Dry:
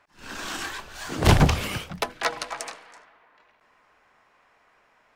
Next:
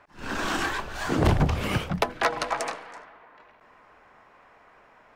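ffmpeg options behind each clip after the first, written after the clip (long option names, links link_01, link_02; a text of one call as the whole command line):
ffmpeg -i in.wav -af "highshelf=frequency=2300:gain=-11,acompressor=threshold=-29dB:ratio=4,volume=9dB" out.wav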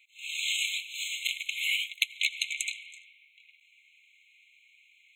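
ffmpeg -i in.wav -af "afftfilt=real='re*eq(mod(floor(b*sr/1024/2100),2),1)':imag='im*eq(mod(floor(b*sr/1024/2100),2),1)':win_size=1024:overlap=0.75,volume=7dB" out.wav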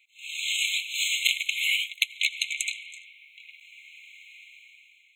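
ffmpeg -i in.wav -af "dynaudnorm=framelen=240:gausssize=7:maxgain=14dB,volume=-1dB" out.wav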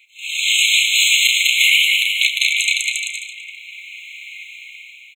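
ffmpeg -i in.wav -filter_complex "[0:a]asplit=2[link_01][link_02];[link_02]adelay=33,volume=-11dB[link_03];[link_01][link_03]amix=inputs=2:normalize=0,aecho=1:1:200|350|462.5|546.9|610.2:0.631|0.398|0.251|0.158|0.1,alimiter=level_in=12.5dB:limit=-1dB:release=50:level=0:latency=1,volume=-1dB" out.wav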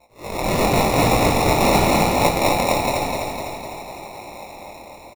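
ffmpeg -i in.wav -filter_complex "[0:a]acrusher=samples=28:mix=1:aa=0.000001,flanger=delay=17:depth=7.3:speed=0.93,asplit=2[link_01][link_02];[link_02]aecho=0:1:252|504|756|1008|1260|1512|1764|2016:0.562|0.332|0.196|0.115|0.0681|0.0402|0.0237|0.014[link_03];[link_01][link_03]amix=inputs=2:normalize=0" out.wav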